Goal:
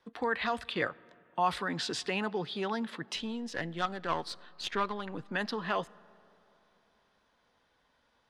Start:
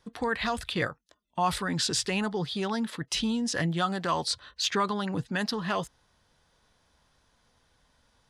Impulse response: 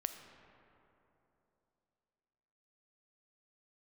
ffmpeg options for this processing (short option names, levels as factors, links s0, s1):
-filter_complex "[0:a]acrossover=split=220 4000:gain=0.251 1 0.224[s0][s1][s2];[s0][s1][s2]amix=inputs=3:normalize=0,asettb=1/sr,asplit=3[s3][s4][s5];[s3]atrim=end=3.164[s6];[s4]atrim=start=3.16:end=5.31,asetpts=PTS-STARTPTS,afade=t=in:d=0.004:c=qsin,afade=t=out:st=2.146:d=0.004:c=qsin,aeval=exprs='0.178*(cos(1*acos(clip(val(0)/0.178,-1,1)))-cos(1*PI/2))+0.0251*(cos(3*acos(clip(val(0)/0.178,-1,1)))-cos(3*PI/2))+0.0112*(cos(4*acos(clip(val(0)/0.178,-1,1)))-cos(4*PI/2))':c=same[s7];[s5]atrim=start=5.306[s8];[s6][s7]acrossfade=d=0.004:c1=hsin:c2=qsin[s9];[s9][s8]acrossfade=d=0.004:c1=qsin:c2=hsin,asplit=2[s10][s11];[1:a]atrim=start_sample=2205[s12];[s11][s12]afir=irnorm=-1:irlink=0,volume=0.211[s13];[s10][s13]amix=inputs=2:normalize=0,volume=0.708"